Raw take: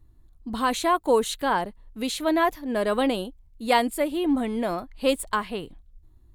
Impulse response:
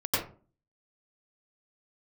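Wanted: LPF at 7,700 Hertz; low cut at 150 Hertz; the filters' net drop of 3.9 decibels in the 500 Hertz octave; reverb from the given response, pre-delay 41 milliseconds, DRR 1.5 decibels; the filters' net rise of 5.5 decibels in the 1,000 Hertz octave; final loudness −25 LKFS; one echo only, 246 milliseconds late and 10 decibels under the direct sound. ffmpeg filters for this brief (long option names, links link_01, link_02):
-filter_complex "[0:a]highpass=150,lowpass=7700,equalizer=frequency=500:width_type=o:gain=-8,equalizer=frequency=1000:width_type=o:gain=8.5,aecho=1:1:246:0.316,asplit=2[link_01][link_02];[1:a]atrim=start_sample=2205,adelay=41[link_03];[link_02][link_03]afir=irnorm=-1:irlink=0,volume=-12dB[link_04];[link_01][link_04]amix=inputs=2:normalize=0,volume=-5dB"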